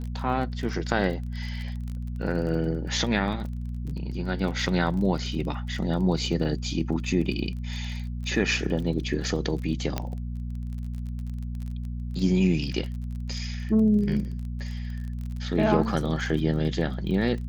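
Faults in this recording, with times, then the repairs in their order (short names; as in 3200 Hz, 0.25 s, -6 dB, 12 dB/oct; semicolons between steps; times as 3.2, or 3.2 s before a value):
crackle 28/s -34 dBFS
hum 60 Hz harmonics 4 -32 dBFS
9.98 pop -13 dBFS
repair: de-click; de-hum 60 Hz, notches 4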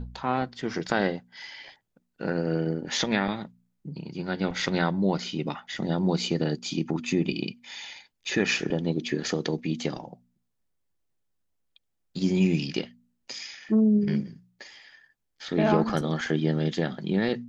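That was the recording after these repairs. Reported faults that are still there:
none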